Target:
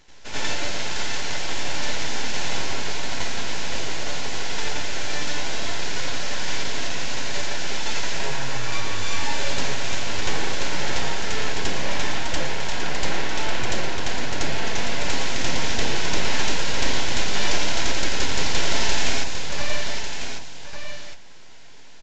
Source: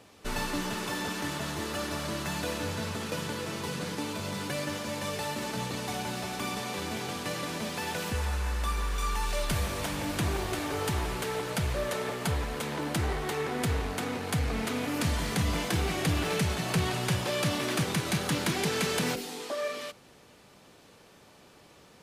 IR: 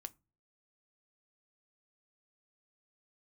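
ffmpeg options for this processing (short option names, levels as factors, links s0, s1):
-filter_complex "[0:a]lowshelf=f=330:g=-9,aeval=exprs='abs(val(0))':c=same,asplit=2[s0][s1];[1:a]atrim=start_sample=2205,asetrate=34839,aresample=44100,adelay=84[s2];[s1][s2]afir=irnorm=-1:irlink=0,volume=2.99[s3];[s0][s3]amix=inputs=2:normalize=0,aresample=16000,aresample=44100,bandreject=f=1200:w=5.2,aecho=1:1:1148:0.422,volume=1.68"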